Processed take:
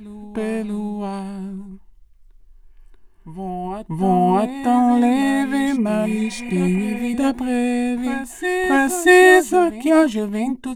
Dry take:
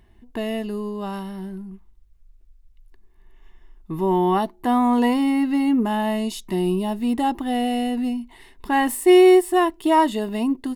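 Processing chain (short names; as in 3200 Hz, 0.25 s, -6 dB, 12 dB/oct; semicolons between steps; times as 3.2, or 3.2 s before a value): formant shift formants -3 st; spectral repair 6.08–6.99, 500–3100 Hz after; reverse echo 0.635 s -11 dB; gain +3 dB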